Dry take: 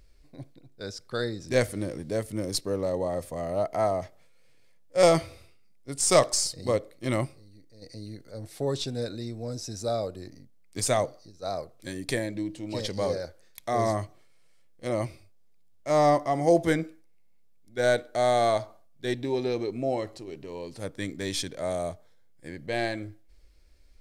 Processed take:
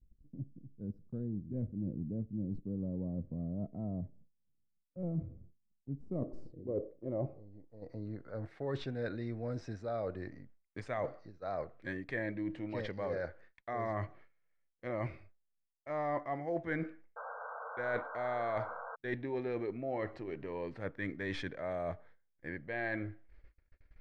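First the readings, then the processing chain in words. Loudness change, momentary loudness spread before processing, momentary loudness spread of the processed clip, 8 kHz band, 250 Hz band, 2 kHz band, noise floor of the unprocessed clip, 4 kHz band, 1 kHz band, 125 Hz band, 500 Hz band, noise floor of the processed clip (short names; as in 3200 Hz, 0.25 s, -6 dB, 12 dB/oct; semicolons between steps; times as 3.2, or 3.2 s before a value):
-11.5 dB, 19 LU, 11 LU, under -35 dB, -7.0 dB, -6.5 dB, -55 dBFS, -21.0 dB, -12.0 dB, -6.0 dB, -12.5 dB, -79 dBFS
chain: low-pass sweep 210 Hz -> 1800 Hz, 5.94–8.61; reverse; compressor 5:1, threshold -33 dBFS, peak gain reduction 16 dB; reverse; gate -54 dBFS, range -29 dB; painted sound noise, 17.16–18.96, 440–1600 Hz -43 dBFS; gain -1.5 dB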